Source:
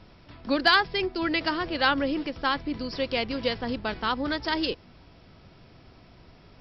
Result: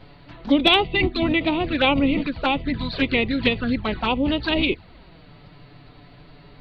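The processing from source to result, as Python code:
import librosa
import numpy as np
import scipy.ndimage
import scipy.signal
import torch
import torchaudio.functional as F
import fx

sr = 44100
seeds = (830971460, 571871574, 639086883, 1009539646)

y = fx.env_flanger(x, sr, rest_ms=8.5, full_db=-24.5)
y = fx.formant_shift(y, sr, semitones=-3)
y = y * 10.0 ** (9.0 / 20.0)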